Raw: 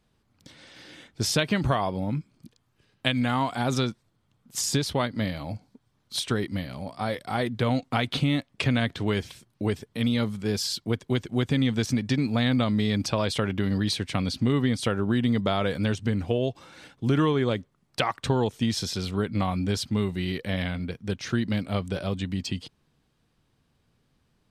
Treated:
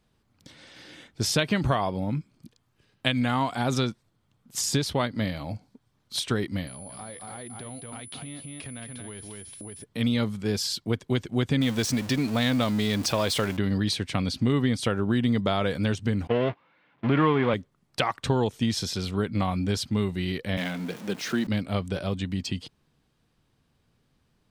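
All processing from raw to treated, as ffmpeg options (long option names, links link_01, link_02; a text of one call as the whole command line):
ffmpeg -i in.wav -filter_complex "[0:a]asettb=1/sr,asplit=3[link_01][link_02][link_03];[link_01]atrim=end=6.674[link_04];[link_02]atrim=start=6.67:end=9.84,asetpts=PTS-STARTPTS,afade=type=in:duration=0.004:curve=qsin,afade=type=out:start_time=3.166:duration=0.004:curve=qsin,aecho=1:1:225:0.398,atrim=end_sample=139797,acompressor=threshold=-39dB:ratio=5:attack=3.2:release=140:knee=1:detection=peak,aeval=exprs='val(0)+0.00708*sin(2*PI*10000*n/s)':channel_layout=same[link_05];[link_03]atrim=start=9.836[link_06];[link_04][link_05]acrossfade=duration=0.004:curve1=hsin:curve2=qsin[link_07];[link_07][link_06]acrossfade=duration=0.004:curve1=qsin:curve2=hsin,asettb=1/sr,asplit=3[link_08][link_09][link_10];[link_08]atrim=end=11.614[link_11];[link_09]atrim=start=11.61:end=13.57,asetpts=PTS-STARTPTS,afade=type=in:duration=0.004:curve=qsin,afade=type=out:start_time=1.956:duration=0.004:curve=qsin,aeval=exprs='val(0)+0.5*0.0224*sgn(val(0))':channel_layout=same,bass=frequency=250:gain=-4,treble=frequency=4000:gain=3[link_12];[link_10]atrim=start=13.566[link_13];[link_11][link_12]acrossfade=duration=0.004:curve1=hsin:curve2=qsin[link_14];[link_14][link_13]acrossfade=duration=0.004:curve1=qsin:curve2=hsin,asettb=1/sr,asplit=3[link_15][link_16][link_17];[link_15]atrim=end=16.274[link_18];[link_16]atrim=start=16.27:end=17.54,asetpts=PTS-STARTPTS,afade=type=in:duration=0.004:curve=qsin,afade=type=out:start_time=1.266:duration=0.004:curve=qsin,aeval=exprs='val(0)+0.5*0.0531*sgn(val(0))':channel_layout=same,agate=range=-33dB:threshold=-27dB:ratio=16:release=100:detection=peak,highpass=140,equalizer=frequency=360:width_type=q:width=4:gain=-5,equalizer=frequency=1000:width_type=q:width=4:gain=5,equalizer=frequency=2100:width_type=q:width=4:gain=4,lowpass=frequency=3000:width=0.5412,lowpass=frequency=3000:width=1.3066[link_19];[link_17]atrim=start=17.536[link_20];[link_18][link_19]acrossfade=duration=0.004:curve1=hsin:curve2=qsin[link_21];[link_21][link_20]acrossfade=duration=0.004:curve1=qsin:curve2=hsin,asettb=1/sr,asplit=3[link_22][link_23][link_24];[link_22]atrim=end=20.574[link_25];[link_23]atrim=start=20.57:end=21.47,asetpts=PTS-STARTPTS,afade=type=in:duration=0.004:curve=qsin,afade=type=out:start_time=0.896:duration=0.004:curve=qsin,aeval=exprs='val(0)+0.5*0.0158*sgn(val(0))':channel_layout=same,highpass=frequency=170:width=0.5412,highpass=frequency=170:width=1.3066[link_26];[link_24]atrim=start=21.466[link_27];[link_25][link_26]acrossfade=duration=0.004:curve1=hsin:curve2=qsin[link_28];[link_28][link_27]acrossfade=duration=0.004:curve1=qsin:curve2=hsin" out.wav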